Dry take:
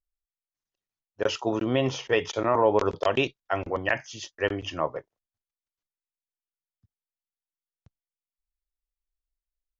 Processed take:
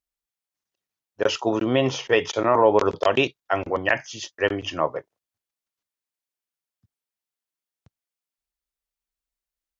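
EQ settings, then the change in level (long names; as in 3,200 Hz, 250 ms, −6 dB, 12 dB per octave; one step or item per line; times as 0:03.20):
high-pass filter 120 Hz 6 dB per octave
+4.5 dB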